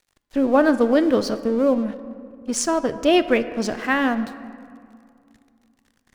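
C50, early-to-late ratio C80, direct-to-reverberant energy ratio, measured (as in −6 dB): 13.0 dB, 14.0 dB, 11.5 dB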